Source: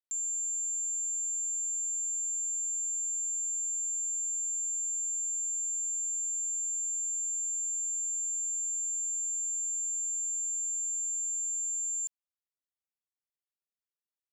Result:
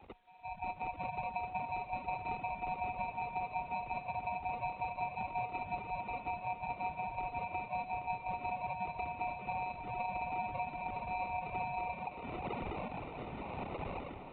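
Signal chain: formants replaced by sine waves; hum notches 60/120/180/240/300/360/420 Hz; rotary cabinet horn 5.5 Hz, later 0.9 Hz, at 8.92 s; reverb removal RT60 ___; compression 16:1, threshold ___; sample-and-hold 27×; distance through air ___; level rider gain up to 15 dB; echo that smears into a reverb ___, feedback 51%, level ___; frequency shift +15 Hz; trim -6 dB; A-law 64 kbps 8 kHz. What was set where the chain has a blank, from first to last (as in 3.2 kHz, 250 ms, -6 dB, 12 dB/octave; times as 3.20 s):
1 s, -44 dBFS, 72 m, 714 ms, -9.5 dB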